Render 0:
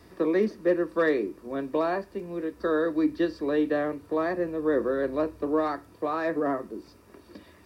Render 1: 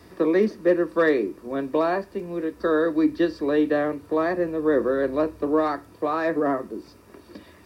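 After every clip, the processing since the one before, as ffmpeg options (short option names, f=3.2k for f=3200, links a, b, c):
-af "highpass=49,volume=4dB"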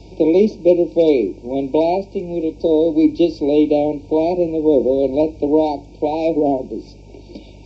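-af "afftfilt=real='re*(1-between(b*sr/4096,950,2200))':imag='im*(1-between(b*sr/4096,950,2200))':win_size=4096:overlap=0.75,aresample=16000,aresample=44100,aeval=exprs='val(0)+0.00398*(sin(2*PI*50*n/s)+sin(2*PI*2*50*n/s)/2+sin(2*PI*3*50*n/s)/3+sin(2*PI*4*50*n/s)/4+sin(2*PI*5*50*n/s)/5)':c=same,volume=7dB"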